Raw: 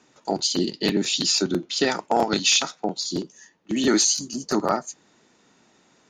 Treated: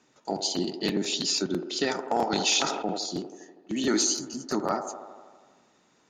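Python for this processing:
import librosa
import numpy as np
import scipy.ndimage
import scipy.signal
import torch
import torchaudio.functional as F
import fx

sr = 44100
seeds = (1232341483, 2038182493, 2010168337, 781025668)

y = fx.echo_wet_bandpass(x, sr, ms=81, feedback_pct=70, hz=610.0, wet_db=-8.0)
y = fx.sustainer(y, sr, db_per_s=46.0, at=(2.32, 3.06))
y = y * librosa.db_to_amplitude(-5.5)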